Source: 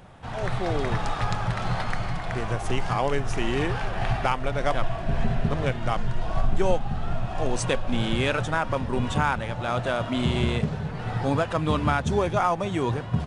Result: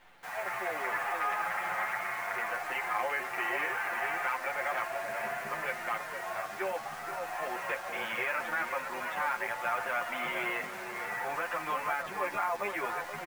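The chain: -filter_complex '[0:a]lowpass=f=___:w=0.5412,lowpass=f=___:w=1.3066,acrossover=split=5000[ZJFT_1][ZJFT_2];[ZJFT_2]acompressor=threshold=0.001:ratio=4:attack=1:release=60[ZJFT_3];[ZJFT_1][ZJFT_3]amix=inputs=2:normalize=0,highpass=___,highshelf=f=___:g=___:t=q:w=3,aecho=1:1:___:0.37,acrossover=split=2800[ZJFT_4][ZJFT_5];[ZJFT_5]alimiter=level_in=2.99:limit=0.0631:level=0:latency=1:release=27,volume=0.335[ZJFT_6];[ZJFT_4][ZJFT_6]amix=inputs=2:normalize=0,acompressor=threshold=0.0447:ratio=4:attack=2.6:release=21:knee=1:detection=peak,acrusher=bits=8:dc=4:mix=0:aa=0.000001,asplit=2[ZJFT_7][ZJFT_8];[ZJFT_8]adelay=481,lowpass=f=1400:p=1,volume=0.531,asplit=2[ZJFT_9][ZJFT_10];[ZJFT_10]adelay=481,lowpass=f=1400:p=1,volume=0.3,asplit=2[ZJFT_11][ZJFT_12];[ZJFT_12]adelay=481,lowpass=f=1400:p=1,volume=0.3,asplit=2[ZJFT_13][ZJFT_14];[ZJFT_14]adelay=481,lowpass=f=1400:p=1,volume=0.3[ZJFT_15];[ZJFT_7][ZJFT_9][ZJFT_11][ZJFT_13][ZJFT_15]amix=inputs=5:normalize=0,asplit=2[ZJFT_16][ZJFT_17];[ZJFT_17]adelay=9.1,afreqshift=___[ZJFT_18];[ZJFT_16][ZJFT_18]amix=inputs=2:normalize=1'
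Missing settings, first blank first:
7700, 7700, 760, 3100, -13.5, 5.7, 0.68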